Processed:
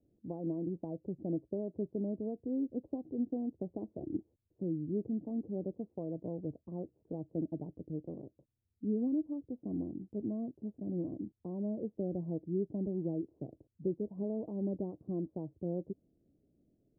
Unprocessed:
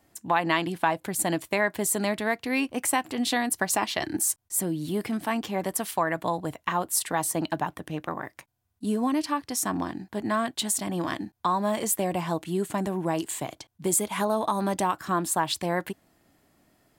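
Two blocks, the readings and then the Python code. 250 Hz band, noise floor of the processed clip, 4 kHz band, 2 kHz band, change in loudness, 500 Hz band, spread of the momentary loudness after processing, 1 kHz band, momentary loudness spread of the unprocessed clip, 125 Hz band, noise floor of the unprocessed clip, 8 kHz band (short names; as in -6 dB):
-6.0 dB, -80 dBFS, under -40 dB, under -40 dB, -11.5 dB, -10.0 dB, 7 LU, -30.0 dB, 7 LU, -6.0 dB, -72 dBFS, under -40 dB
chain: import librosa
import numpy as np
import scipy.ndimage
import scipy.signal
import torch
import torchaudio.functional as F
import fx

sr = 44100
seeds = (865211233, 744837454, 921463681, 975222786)

y = scipy.signal.sosfilt(scipy.signal.butter(6, 510.0, 'lowpass', fs=sr, output='sos'), x)
y = y * librosa.db_to_amplitude(-6.0)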